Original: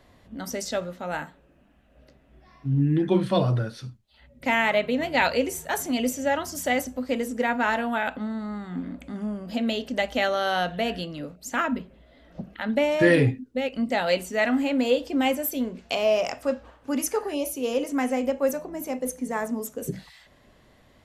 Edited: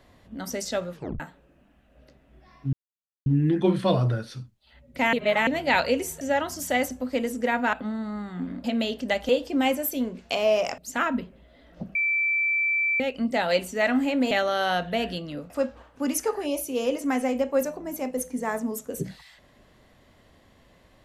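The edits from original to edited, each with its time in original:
0.93 s: tape stop 0.27 s
2.73 s: insert silence 0.53 s
4.60–4.94 s: reverse
5.68–6.17 s: delete
7.69–8.09 s: delete
9.00–9.52 s: delete
10.17–11.36 s: swap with 14.89–16.38 s
12.53–13.58 s: bleep 2.33 kHz -21 dBFS

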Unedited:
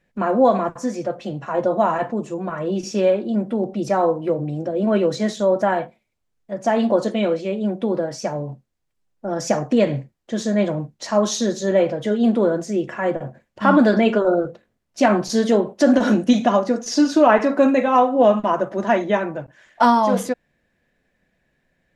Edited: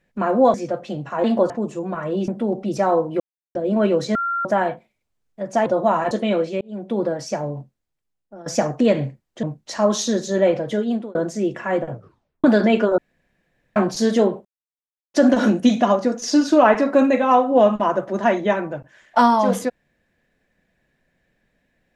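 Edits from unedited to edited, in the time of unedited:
0.54–0.90 s: delete
1.60–2.05 s: swap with 6.77–7.03 s
2.83–3.39 s: delete
4.31–4.66 s: mute
5.26–5.56 s: bleep 1.38 kHz -20 dBFS
7.53–7.92 s: fade in
8.44–9.38 s: fade out, to -18 dB
10.35–10.76 s: delete
12.06–12.48 s: fade out
13.24 s: tape stop 0.53 s
14.31–15.09 s: room tone
15.78 s: insert silence 0.69 s

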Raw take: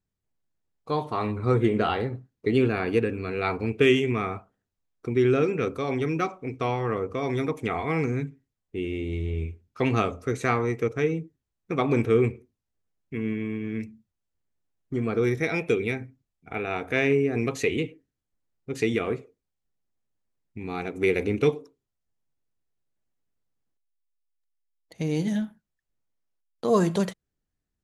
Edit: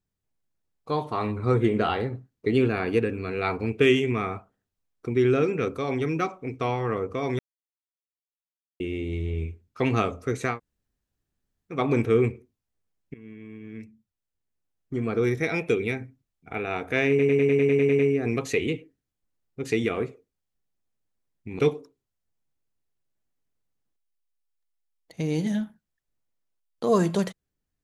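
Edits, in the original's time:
7.39–8.80 s: mute
10.52–11.74 s: room tone, crossfade 0.16 s
13.14–15.20 s: fade in, from -19.5 dB
17.09 s: stutter 0.10 s, 10 plays
20.69–21.40 s: delete

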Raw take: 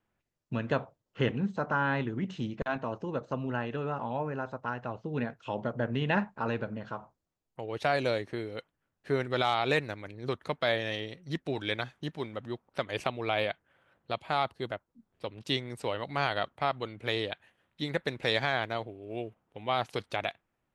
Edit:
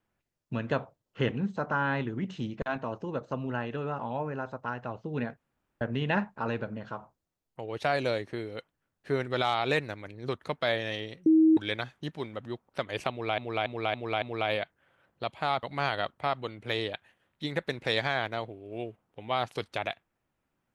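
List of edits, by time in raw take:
5.37–5.81 s: room tone
11.26–11.57 s: bleep 318 Hz -16.5 dBFS
13.10–13.38 s: loop, 5 plays
14.51–16.01 s: delete

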